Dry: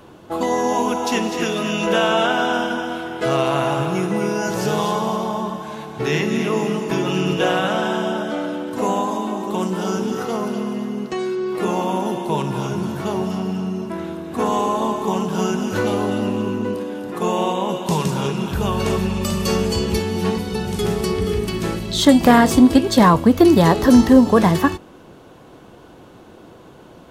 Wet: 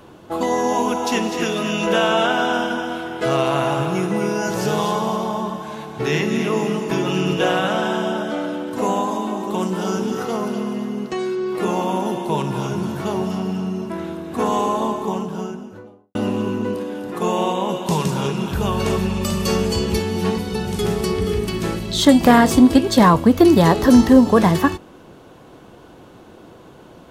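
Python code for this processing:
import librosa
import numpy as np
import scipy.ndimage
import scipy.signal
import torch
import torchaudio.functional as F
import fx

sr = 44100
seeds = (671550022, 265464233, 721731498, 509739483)

y = fx.studio_fade_out(x, sr, start_s=14.64, length_s=1.51)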